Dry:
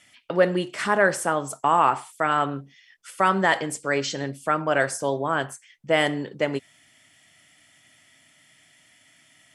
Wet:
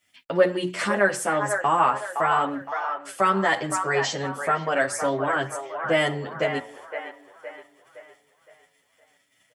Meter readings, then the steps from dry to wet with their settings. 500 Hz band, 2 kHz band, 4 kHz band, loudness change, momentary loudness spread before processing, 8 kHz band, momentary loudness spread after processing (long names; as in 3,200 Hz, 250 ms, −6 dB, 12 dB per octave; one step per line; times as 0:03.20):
0.0 dB, 0.0 dB, −0.5 dB, −0.5 dB, 9 LU, +0.5 dB, 14 LU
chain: mains-hum notches 60/120/180/240/300/360 Hz
noise gate −55 dBFS, range −17 dB
in parallel at −2 dB: downward compressor, threshold −27 dBFS, peak gain reduction 13 dB
on the sum: bit-depth reduction 12 bits, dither none
delay with a band-pass on its return 515 ms, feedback 43%, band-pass 1,100 Hz, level −5.5 dB
barber-pole flanger 9 ms +0.46 Hz